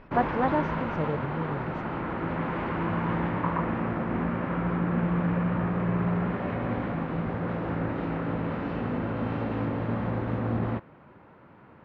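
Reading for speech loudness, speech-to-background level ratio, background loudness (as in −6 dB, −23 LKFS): −31.5 LKFS, −2.0 dB, −29.5 LKFS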